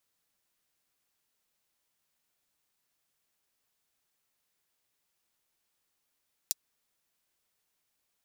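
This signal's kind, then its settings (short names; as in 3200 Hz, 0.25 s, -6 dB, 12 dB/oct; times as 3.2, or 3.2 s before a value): closed hi-hat, high-pass 5000 Hz, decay 0.03 s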